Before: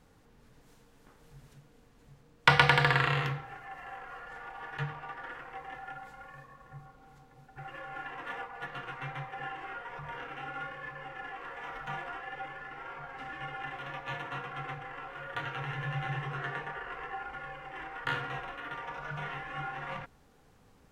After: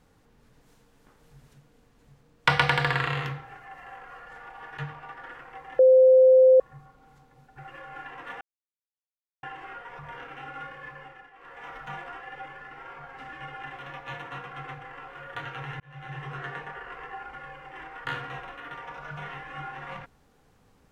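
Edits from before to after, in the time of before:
5.79–6.6 bleep 518 Hz -12 dBFS
8.41–9.43 mute
10.96–11.66 dip -13.5 dB, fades 0.35 s linear
15.8–16.3 fade in

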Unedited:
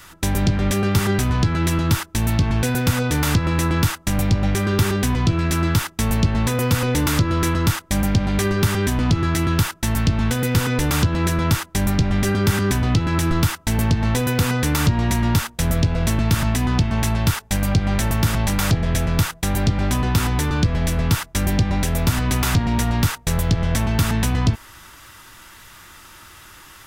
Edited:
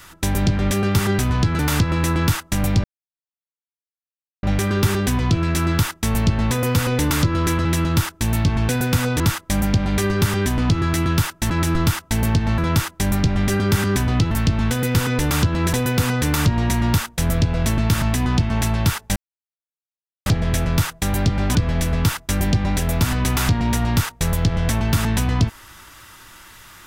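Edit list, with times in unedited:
1.59–3.14 move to 7.61
4.39 insert silence 1.59 s
9.91–11.33 swap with 13.06–14.14
17.57–18.67 mute
19.96–20.61 cut

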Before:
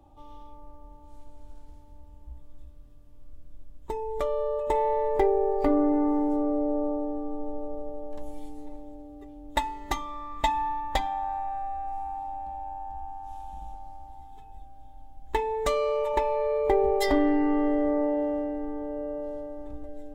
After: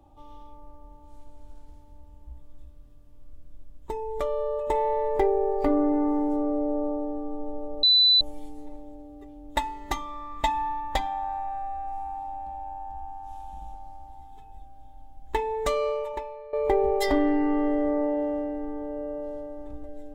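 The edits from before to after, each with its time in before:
7.83–8.21 bleep 3990 Hz -15 dBFS
15.87–16.53 fade out quadratic, to -16.5 dB

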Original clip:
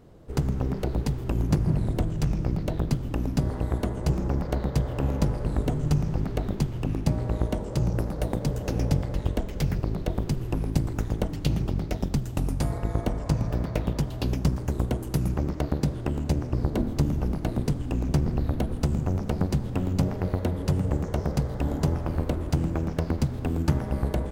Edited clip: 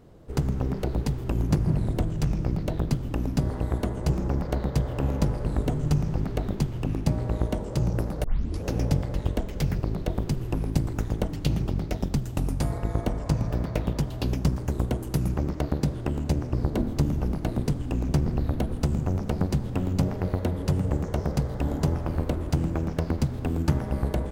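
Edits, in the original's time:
8.24 tape start 0.44 s

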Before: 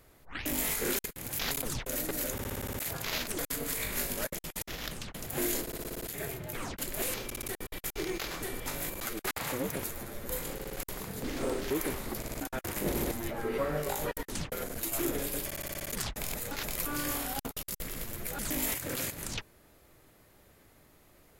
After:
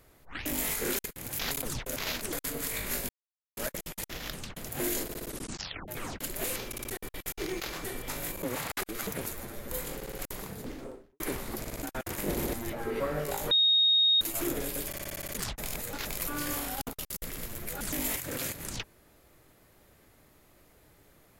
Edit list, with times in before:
1.96–3.02 cut
4.15 insert silence 0.48 s
5.84 tape stop 0.62 s
9.01–9.65 reverse
10.94–11.78 studio fade out
14.09–14.79 bleep 3730 Hz -20 dBFS

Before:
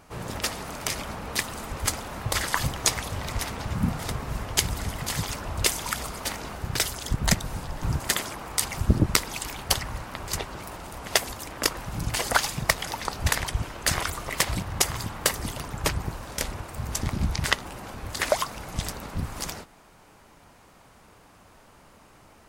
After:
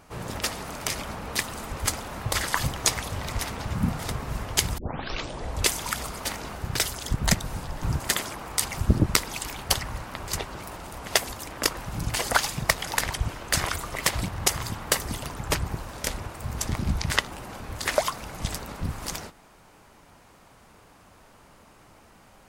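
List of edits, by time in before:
4.78 tape start 0.91 s
12.97–13.31 cut

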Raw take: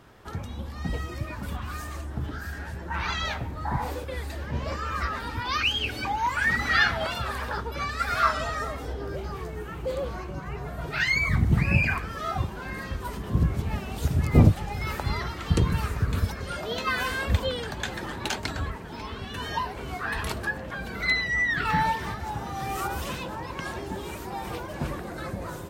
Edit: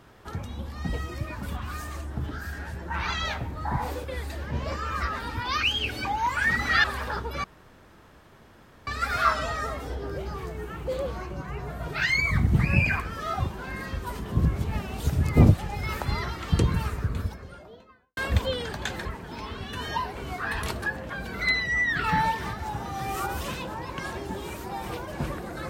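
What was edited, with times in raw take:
6.84–7.25 cut
7.85 insert room tone 1.43 s
15.54–17.15 studio fade out
18.03–18.66 cut

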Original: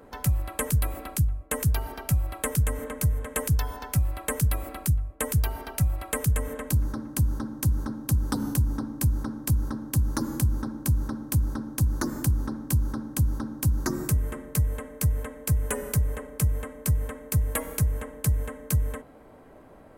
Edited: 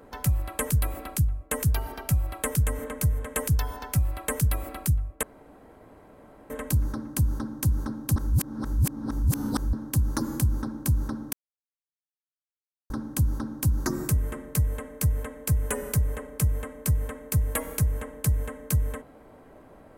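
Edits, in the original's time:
5.23–6.5 room tone
8.16–9.73 reverse
11.33–12.9 mute

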